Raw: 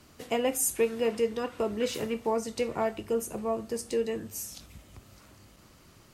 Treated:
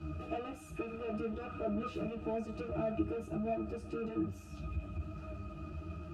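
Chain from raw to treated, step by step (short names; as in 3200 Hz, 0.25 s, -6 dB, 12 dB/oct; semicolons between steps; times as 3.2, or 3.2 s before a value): power-law curve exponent 0.5; octave resonator D#, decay 0.12 s; ensemble effect; gain +4.5 dB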